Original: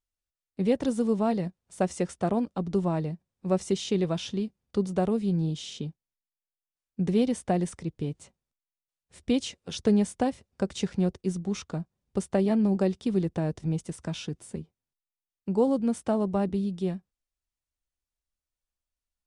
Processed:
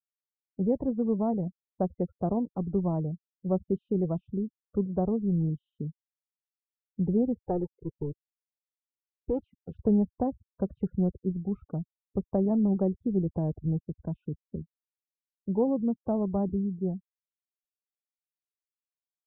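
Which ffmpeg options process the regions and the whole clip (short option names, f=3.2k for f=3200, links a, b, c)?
-filter_complex "[0:a]asettb=1/sr,asplit=3[a][b][c];[a]atrim=end=7.434[d];[b]atrim=start=7.43:end=9.39,asetpts=PTS-STARTPTS,afade=t=in:d=0.004:c=qsin,afade=t=out:st=1.956:d=0.004:c=qsin,aeval=exprs='sgn(val(0))*max(abs(val(0))-0.00891,0)':c=same,aecho=1:1:2.3:0.78,atrim=end_sample=86436[e];[c]atrim=start=9.386[f];[d][e]acrossfade=d=0.004:c1=hsin:c2=qsin[g];[g][f]acrossfade=d=0.004:c1=qsin:c2=hsin,afftfilt=real='re*gte(hypot(re,im),0.0141)':imag='im*gte(hypot(re,im),0.0141)':win_size=1024:overlap=0.75,lowpass=f=1k:w=0.5412,lowpass=f=1k:w=1.3066,lowshelf=f=120:g=10.5,volume=-3.5dB"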